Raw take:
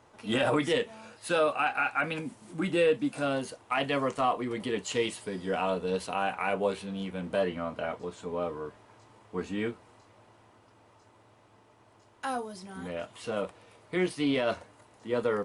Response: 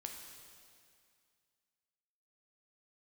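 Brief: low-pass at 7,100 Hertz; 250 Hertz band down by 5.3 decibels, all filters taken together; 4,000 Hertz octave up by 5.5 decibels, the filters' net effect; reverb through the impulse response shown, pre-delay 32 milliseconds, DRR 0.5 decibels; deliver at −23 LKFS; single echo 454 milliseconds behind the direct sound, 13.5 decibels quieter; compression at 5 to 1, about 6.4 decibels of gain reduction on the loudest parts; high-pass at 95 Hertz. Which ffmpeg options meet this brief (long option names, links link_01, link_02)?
-filter_complex "[0:a]highpass=95,lowpass=7100,equalizer=frequency=250:width_type=o:gain=-7,equalizer=frequency=4000:width_type=o:gain=8,acompressor=threshold=-29dB:ratio=5,aecho=1:1:454:0.211,asplit=2[link_01][link_02];[1:a]atrim=start_sample=2205,adelay=32[link_03];[link_02][link_03]afir=irnorm=-1:irlink=0,volume=2.5dB[link_04];[link_01][link_04]amix=inputs=2:normalize=0,volume=9.5dB"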